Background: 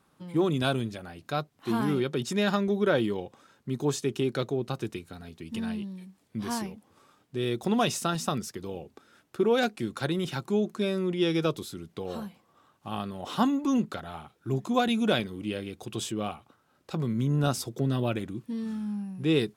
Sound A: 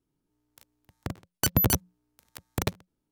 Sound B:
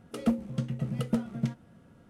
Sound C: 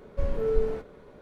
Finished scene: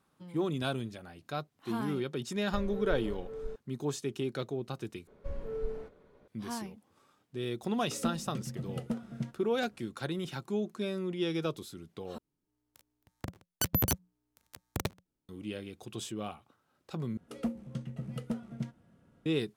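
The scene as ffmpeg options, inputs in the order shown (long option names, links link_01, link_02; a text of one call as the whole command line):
ffmpeg -i bed.wav -i cue0.wav -i cue1.wav -i cue2.wav -filter_complex "[3:a]asplit=2[link_01][link_02];[2:a]asplit=2[link_03][link_04];[0:a]volume=-6.5dB[link_05];[link_01]aecho=1:1:531:0.596[link_06];[link_05]asplit=4[link_07][link_08][link_09][link_10];[link_07]atrim=end=5.074[link_11];[link_02]atrim=end=1.21,asetpts=PTS-STARTPTS,volume=-11dB[link_12];[link_08]atrim=start=6.276:end=12.184[link_13];[1:a]atrim=end=3.11,asetpts=PTS-STARTPTS,volume=-6dB[link_14];[link_09]atrim=start=15.286:end=17.174[link_15];[link_04]atrim=end=2.09,asetpts=PTS-STARTPTS,volume=-7.5dB[link_16];[link_10]atrim=start=19.256[link_17];[link_06]atrim=end=1.21,asetpts=PTS-STARTPTS,volume=-11dB,afade=type=in:duration=0.004:curve=hsin,afade=type=out:start_time=1.206:duration=0.004:curve=hsin,adelay=2350[link_18];[link_03]atrim=end=2.09,asetpts=PTS-STARTPTS,volume=-7dB,afade=type=in:duration=0.004:curve=hsin,afade=type=out:start_time=2.086:duration=0.004:curve=hsin,adelay=7770[link_19];[link_11][link_12]acrossfade=duration=0.004:curve1=hsin:curve2=hsin[link_20];[link_20][link_13]acrossfade=duration=0.004:curve1=hsin:curve2=hsin[link_21];[link_21][link_14]acrossfade=duration=0.004:curve1=hsin:curve2=hsin[link_22];[link_22][link_15]acrossfade=duration=0.004:curve1=hsin:curve2=hsin[link_23];[link_23][link_16]acrossfade=duration=0.004:curve1=hsin:curve2=hsin[link_24];[link_24][link_17]acrossfade=duration=0.004:curve1=hsin:curve2=hsin[link_25];[link_25][link_18][link_19]amix=inputs=3:normalize=0" out.wav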